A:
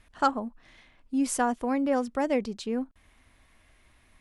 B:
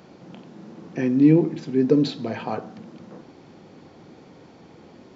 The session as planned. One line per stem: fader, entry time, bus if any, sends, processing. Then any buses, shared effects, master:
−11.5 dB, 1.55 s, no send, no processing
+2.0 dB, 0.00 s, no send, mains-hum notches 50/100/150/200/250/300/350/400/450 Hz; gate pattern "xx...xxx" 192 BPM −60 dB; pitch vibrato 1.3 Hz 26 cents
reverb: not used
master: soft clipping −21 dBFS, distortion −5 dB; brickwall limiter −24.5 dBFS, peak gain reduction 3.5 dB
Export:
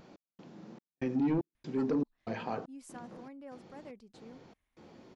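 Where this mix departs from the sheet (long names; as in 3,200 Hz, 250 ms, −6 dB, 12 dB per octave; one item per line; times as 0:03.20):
stem A −11.5 dB → −22.5 dB
stem B +2.0 dB → −7.0 dB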